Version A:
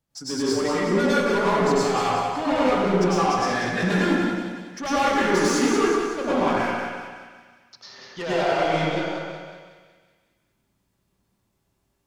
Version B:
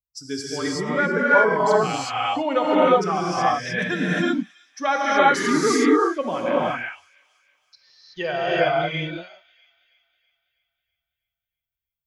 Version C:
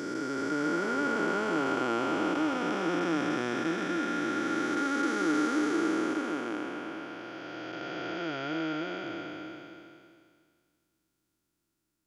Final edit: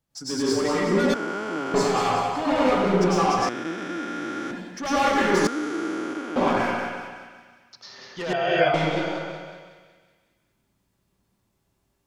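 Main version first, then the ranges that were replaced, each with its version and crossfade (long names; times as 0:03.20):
A
0:01.14–0:01.74: punch in from C
0:03.49–0:04.51: punch in from C
0:05.47–0:06.36: punch in from C
0:08.33–0:08.74: punch in from B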